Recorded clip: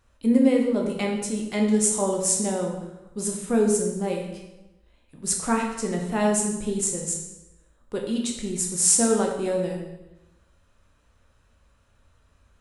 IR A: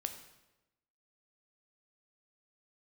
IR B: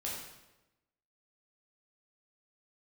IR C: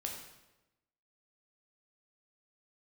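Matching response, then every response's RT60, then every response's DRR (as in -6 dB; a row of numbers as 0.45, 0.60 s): C; 1.0, 1.0, 1.0 s; 6.5, -5.0, 0.5 dB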